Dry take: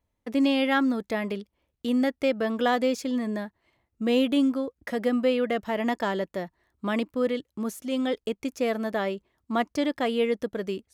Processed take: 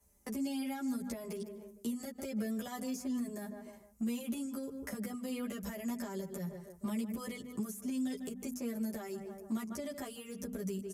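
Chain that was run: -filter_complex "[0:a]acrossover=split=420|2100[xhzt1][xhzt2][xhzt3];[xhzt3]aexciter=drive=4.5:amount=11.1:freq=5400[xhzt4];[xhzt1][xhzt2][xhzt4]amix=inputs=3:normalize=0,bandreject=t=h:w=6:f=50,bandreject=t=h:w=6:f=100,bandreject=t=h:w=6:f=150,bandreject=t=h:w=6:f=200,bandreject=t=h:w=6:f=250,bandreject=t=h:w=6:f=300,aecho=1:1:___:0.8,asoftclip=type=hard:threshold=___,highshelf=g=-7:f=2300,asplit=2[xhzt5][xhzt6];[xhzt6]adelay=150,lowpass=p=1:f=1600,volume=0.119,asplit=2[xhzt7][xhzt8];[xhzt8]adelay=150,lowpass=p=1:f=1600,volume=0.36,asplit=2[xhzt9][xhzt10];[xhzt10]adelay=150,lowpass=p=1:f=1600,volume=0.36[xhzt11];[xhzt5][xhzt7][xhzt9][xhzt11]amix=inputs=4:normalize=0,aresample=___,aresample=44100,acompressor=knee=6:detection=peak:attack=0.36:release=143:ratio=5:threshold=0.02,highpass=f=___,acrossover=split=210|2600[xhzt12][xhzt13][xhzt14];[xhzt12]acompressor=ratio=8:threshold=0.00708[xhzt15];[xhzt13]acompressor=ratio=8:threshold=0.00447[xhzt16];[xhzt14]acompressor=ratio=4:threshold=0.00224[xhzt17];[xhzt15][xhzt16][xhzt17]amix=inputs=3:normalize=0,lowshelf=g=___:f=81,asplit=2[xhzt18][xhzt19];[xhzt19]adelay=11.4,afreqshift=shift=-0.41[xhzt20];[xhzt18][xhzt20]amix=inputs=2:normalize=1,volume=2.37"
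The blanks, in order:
5, 0.299, 32000, 59, 12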